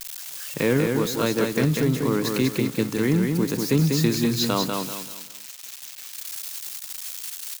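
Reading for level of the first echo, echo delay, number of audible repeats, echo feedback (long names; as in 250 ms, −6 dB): −4.0 dB, 194 ms, 4, 33%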